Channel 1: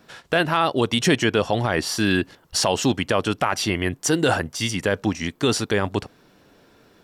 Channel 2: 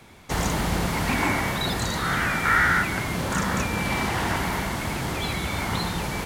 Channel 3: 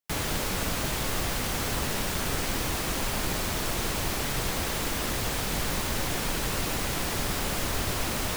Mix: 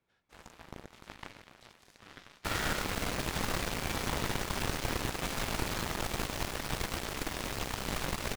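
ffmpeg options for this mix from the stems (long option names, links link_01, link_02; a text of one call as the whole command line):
ffmpeg -i stem1.wav -i stem2.wav -i stem3.wav -filter_complex "[0:a]acompressor=threshold=-30dB:ratio=6,volume=-13dB[link_01];[1:a]aeval=exprs='clip(val(0),-1,0.0841)':channel_layout=same,volume=-13dB[link_02];[2:a]adelay=2350,volume=-2dB[link_03];[link_01][link_02][link_03]amix=inputs=3:normalize=0,highshelf=frequency=6000:gain=-8.5,aeval=exprs='0.141*(cos(1*acos(clip(val(0)/0.141,-1,1)))-cos(1*PI/2))+0.00631*(cos(3*acos(clip(val(0)/0.141,-1,1)))-cos(3*PI/2))+0.00794*(cos(5*acos(clip(val(0)/0.141,-1,1)))-cos(5*PI/2))+0.0251*(cos(7*acos(clip(val(0)/0.141,-1,1)))-cos(7*PI/2))':channel_layout=same" out.wav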